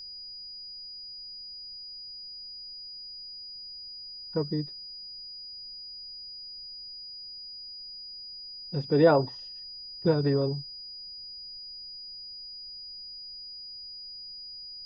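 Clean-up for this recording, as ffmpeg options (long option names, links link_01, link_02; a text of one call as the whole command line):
ffmpeg -i in.wav -af "bandreject=frequency=4900:width=30,agate=range=-21dB:threshold=-35dB" out.wav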